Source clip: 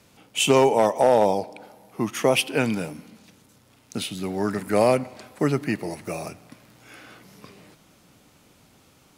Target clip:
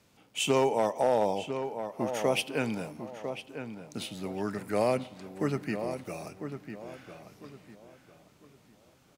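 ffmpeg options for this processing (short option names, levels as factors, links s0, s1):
-filter_complex "[0:a]equalizer=f=11000:w=2.1:g=-3.5,asplit=2[s0][s1];[s1]adelay=1000,lowpass=f=2400:p=1,volume=0.376,asplit=2[s2][s3];[s3]adelay=1000,lowpass=f=2400:p=1,volume=0.31,asplit=2[s4][s5];[s5]adelay=1000,lowpass=f=2400:p=1,volume=0.31,asplit=2[s6][s7];[s7]adelay=1000,lowpass=f=2400:p=1,volume=0.31[s8];[s2][s4][s6][s8]amix=inputs=4:normalize=0[s9];[s0][s9]amix=inputs=2:normalize=0,volume=0.398"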